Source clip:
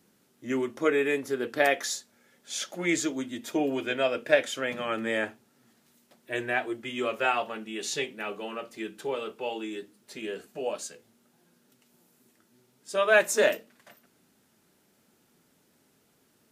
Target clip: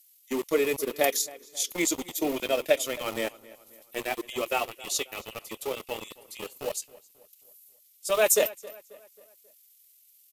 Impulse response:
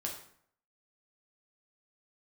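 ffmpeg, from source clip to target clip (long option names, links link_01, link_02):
-filter_complex "[0:a]highpass=170,acrossover=split=1900[link_01][link_02];[link_01]aeval=exprs='val(0)*gte(abs(val(0)),0.0282)':channel_layout=same[link_03];[link_02]aemphasis=mode=production:type=cd[link_04];[link_03][link_04]amix=inputs=2:normalize=0,atempo=1.6,equalizer=frequency=500:width_type=o:width=0.33:gain=3,equalizer=frequency=1600:width_type=o:width=0.33:gain=-12,equalizer=frequency=12500:width_type=o:width=0.33:gain=11,asplit=2[link_05][link_06];[link_06]adelay=269,lowpass=frequency=3600:poles=1,volume=-20dB,asplit=2[link_07][link_08];[link_08]adelay=269,lowpass=frequency=3600:poles=1,volume=0.47,asplit=2[link_09][link_10];[link_10]adelay=269,lowpass=frequency=3600:poles=1,volume=0.47,asplit=2[link_11][link_12];[link_12]adelay=269,lowpass=frequency=3600:poles=1,volume=0.47[link_13];[link_07][link_09][link_11][link_13]amix=inputs=4:normalize=0[link_14];[link_05][link_14]amix=inputs=2:normalize=0"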